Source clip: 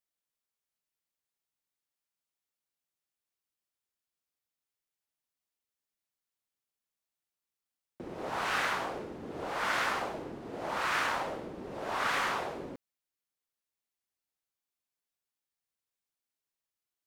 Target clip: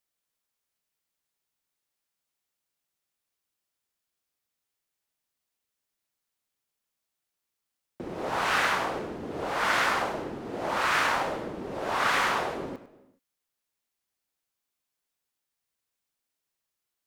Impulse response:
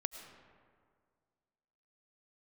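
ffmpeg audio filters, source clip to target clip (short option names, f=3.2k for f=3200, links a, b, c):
-filter_complex "[0:a]asplit=2[a][b];[1:a]atrim=start_sample=2205,afade=t=out:st=0.38:d=0.01,atrim=end_sample=17199,adelay=100[c];[b][c]afir=irnorm=-1:irlink=0,volume=-12dB[d];[a][d]amix=inputs=2:normalize=0,volume=5.5dB"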